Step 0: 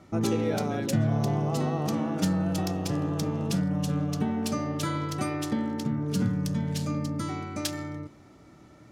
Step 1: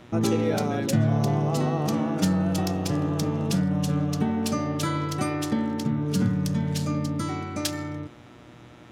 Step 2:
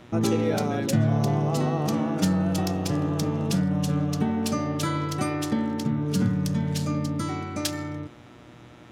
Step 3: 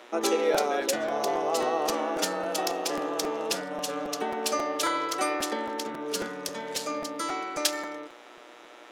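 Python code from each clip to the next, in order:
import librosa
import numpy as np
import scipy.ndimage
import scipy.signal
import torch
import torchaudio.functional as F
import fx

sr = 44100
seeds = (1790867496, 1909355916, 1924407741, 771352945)

y1 = fx.dmg_buzz(x, sr, base_hz=120.0, harmonics=33, level_db=-55.0, tilt_db=-4, odd_only=False)
y1 = y1 * librosa.db_to_amplitude(3.0)
y2 = y1
y3 = scipy.signal.sosfilt(scipy.signal.butter(4, 400.0, 'highpass', fs=sr, output='sos'), y2)
y3 = fx.buffer_crackle(y3, sr, first_s=0.54, period_s=0.27, block=256, kind='repeat')
y3 = y3 * librosa.db_to_amplitude(3.5)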